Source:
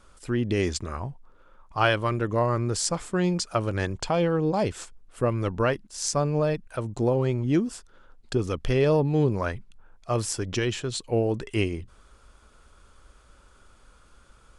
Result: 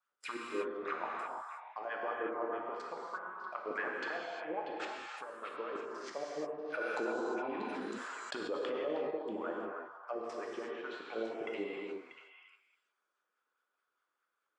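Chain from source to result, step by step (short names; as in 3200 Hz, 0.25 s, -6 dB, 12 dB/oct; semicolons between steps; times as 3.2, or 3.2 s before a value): Chebyshev high-pass 210 Hz, order 2; treble ducked by the level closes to 520 Hz, closed at -22.5 dBFS; gate -49 dBFS, range -19 dB; tilt +3.5 dB/oct; harmonic-percussive split harmonic -17 dB; dynamic EQ 2700 Hz, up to +6 dB, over -52 dBFS, Q 1.1; level quantiser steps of 23 dB; wah 4.8 Hz 360–1800 Hz, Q 2.1; delay with a stepping band-pass 0.319 s, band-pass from 1100 Hz, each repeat 1.4 oct, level -4.5 dB; non-linear reverb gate 0.38 s flat, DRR -2.5 dB; 6.81–9.11 fast leveller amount 70%; gain +11 dB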